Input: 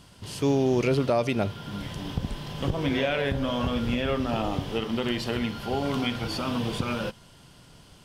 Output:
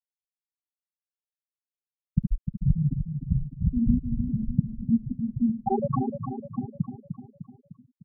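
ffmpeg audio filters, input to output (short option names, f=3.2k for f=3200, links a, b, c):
-filter_complex "[0:a]aecho=1:1:5.3:0.54,acrossover=split=220[a][b];[a]acrusher=bits=5:mode=log:mix=0:aa=0.000001[c];[b]acompressor=threshold=-38dB:ratio=6[d];[c][d]amix=inputs=2:normalize=0,asettb=1/sr,asplit=3[e][f][g];[e]atrim=end=5.534[h];[f]atrim=start=5.53:end=6.04,asetpts=PTS-STARTPTS,afade=t=in:d=0.004:c=qsin,afade=t=out:st=0.506:d=0.004:c=qsin,equalizer=f=1.2k:t=o:w=2.2:g=13.5[i];[g]atrim=start=6.036[j];[h][i]acrossfade=d=0.004:c1=hsin:c2=qsin[k];[k][j]acrossfade=d=0.004:c1=qsin:c2=hsin,dynaudnorm=f=390:g=9:m=15dB,lowpass=f=2.9k:w=0.5412,lowpass=f=2.9k:w=1.3066,afftfilt=real='re*gte(hypot(re,im),1.12)':imag='im*gte(hypot(re,im),1.12)':win_size=1024:overlap=0.75,asplit=2[l][m];[m]adelay=302,lowpass=f=1.9k:p=1,volume=-7.5dB,asplit=2[n][o];[o]adelay=302,lowpass=f=1.9k:p=1,volume=0.53,asplit=2[p][q];[q]adelay=302,lowpass=f=1.9k:p=1,volume=0.53,asplit=2[r][s];[s]adelay=302,lowpass=f=1.9k:p=1,volume=0.53,asplit=2[t][u];[u]adelay=302,lowpass=f=1.9k:p=1,volume=0.53,asplit=2[v][w];[w]adelay=302,lowpass=f=1.9k:p=1,volume=0.53[x];[l][n][p][r][t][v][x]amix=inputs=7:normalize=0,volume=-3dB"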